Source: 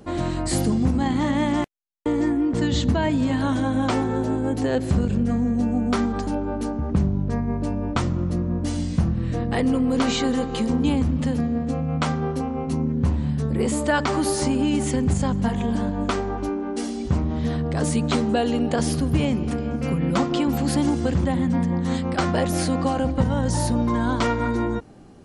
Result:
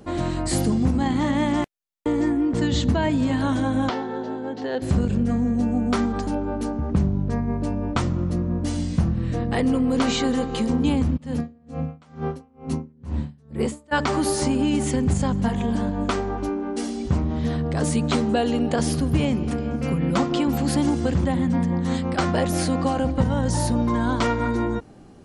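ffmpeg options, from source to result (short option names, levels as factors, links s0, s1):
-filter_complex "[0:a]asettb=1/sr,asplit=3[s0][s1][s2];[s0]atrim=end=3.894[s3];[s1]atrim=start=3.89:end=4.82,asetpts=PTS-STARTPTS,afade=t=in:d=0.004:c=qsin,afade=t=out:st=0.926:d=0.004:c=qsin,highpass=290,equalizer=f=310:t=q:w=4:g=-8,equalizer=f=600:t=q:w=4:g=-5,equalizer=f=1200:t=q:w=4:g=-6,equalizer=f=2400:t=q:w=4:g=-8,lowpass=f=4700:w=0.5412,lowpass=f=4700:w=1.3066[s4];[s2]atrim=start=4.816[s5];[s3][s4]acrossfade=d=0.004:c1=hsin:c2=qsin[s6];[s6][s5]acrossfade=d=0.004:c1=qsin:c2=hsin,asplit=3[s7][s8][s9];[s7]afade=t=out:st=11.16:d=0.02[s10];[s8]aeval=exprs='val(0)*pow(10,-31*(0.5-0.5*cos(2*PI*2.2*n/s))/20)':c=same,afade=t=in:st=11.16:d=0.02,afade=t=out:st=13.91:d=0.02[s11];[s9]afade=t=in:st=13.91:d=0.02[s12];[s10][s11][s12]amix=inputs=3:normalize=0"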